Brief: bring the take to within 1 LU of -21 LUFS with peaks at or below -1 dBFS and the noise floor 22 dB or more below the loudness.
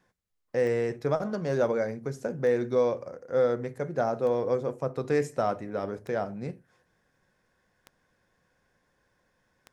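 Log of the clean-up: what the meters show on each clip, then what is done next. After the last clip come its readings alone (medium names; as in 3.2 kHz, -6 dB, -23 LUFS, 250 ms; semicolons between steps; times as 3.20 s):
clicks found 6; loudness -29.0 LUFS; peak level -13.5 dBFS; loudness target -21.0 LUFS
-> de-click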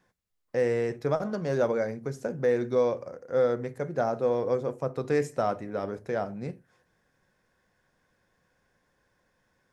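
clicks found 0; loudness -29.0 LUFS; peak level -13.5 dBFS; loudness target -21.0 LUFS
-> trim +8 dB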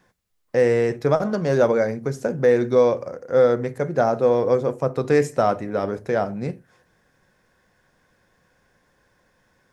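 loudness -21.0 LUFS; peak level -5.5 dBFS; noise floor -65 dBFS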